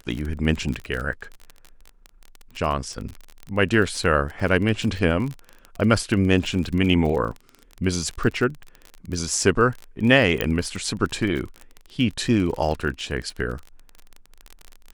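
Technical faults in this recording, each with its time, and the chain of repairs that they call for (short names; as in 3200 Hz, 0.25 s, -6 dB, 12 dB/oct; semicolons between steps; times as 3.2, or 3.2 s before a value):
crackle 31/s -27 dBFS
10.41 pop -8 dBFS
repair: de-click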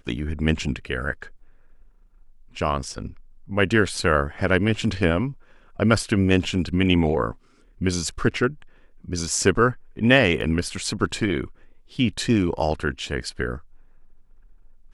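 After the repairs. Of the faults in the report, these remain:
10.41 pop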